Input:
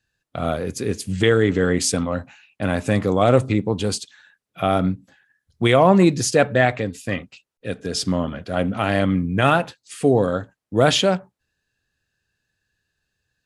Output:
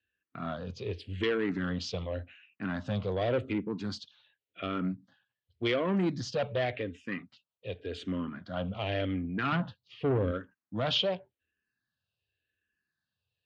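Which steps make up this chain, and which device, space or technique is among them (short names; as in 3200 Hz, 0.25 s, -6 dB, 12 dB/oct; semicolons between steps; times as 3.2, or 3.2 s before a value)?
9.52–10.31 tone controls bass +12 dB, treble -8 dB; barber-pole phaser into a guitar amplifier (endless phaser -0.88 Hz; soft clip -15 dBFS, distortion -12 dB; speaker cabinet 87–4500 Hz, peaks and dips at 87 Hz +5 dB, 150 Hz -4 dB, 810 Hz -5 dB, 3000 Hz +6 dB); gain -7.5 dB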